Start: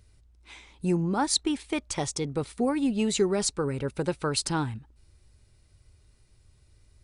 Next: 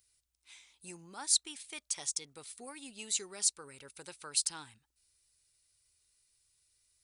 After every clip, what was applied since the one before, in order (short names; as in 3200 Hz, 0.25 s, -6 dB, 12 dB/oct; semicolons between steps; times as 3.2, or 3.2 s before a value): pre-emphasis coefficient 0.97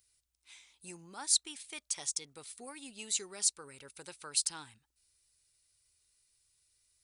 nothing audible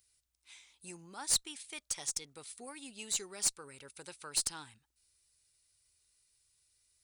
one diode to ground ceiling -22 dBFS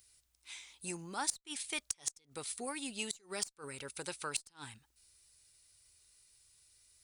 flipped gate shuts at -26 dBFS, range -30 dB; gain +7 dB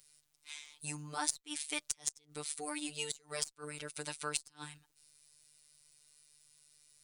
robotiser 149 Hz; gain +3 dB